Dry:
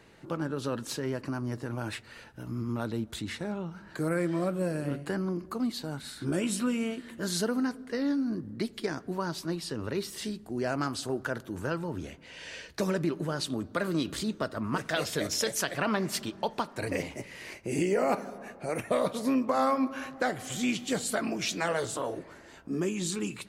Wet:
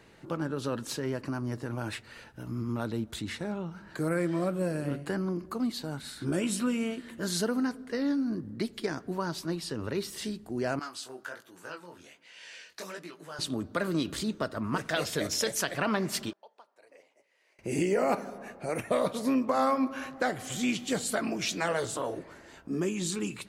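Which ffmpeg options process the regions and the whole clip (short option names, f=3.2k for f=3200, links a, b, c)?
-filter_complex "[0:a]asettb=1/sr,asplit=3[a][b][c];[a]atrim=end=10.794[d];[b]atrim=start=10.79:end=13.39,asetpts=PTS-STARTPTS,afade=t=in:d=0.004:c=qsin,afade=t=out:st=2.596:d=0.004:c=qsin,highpass=f=1.3k:p=1,flanger=delay=16.5:depth=7:speed=1.3[e];[c]atrim=start=13.386[f];[d][e]acrossfade=d=0.004:c1=hsin:c2=qsin[g];[g][f]acrossfade=d=0.004:c1=qsin:c2=hsin,asettb=1/sr,asplit=3[h][i][j];[h]atrim=end=16.334[k];[i]atrim=start=16.33:end=17.59,asetpts=PTS-STARTPTS,afade=t=in:d=0.004:c=qsin,afade=t=out:st=1.256:d=0.004:c=qsin,bandpass=f=550:t=q:w=1.5,aderivative[l];[j]atrim=start=17.586[m];[k][l]acrossfade=d=0.004:c1=hsin:c2=qsin[n];[n][m]acrossfade=d=0.004:c1=qsin:c2=hsin"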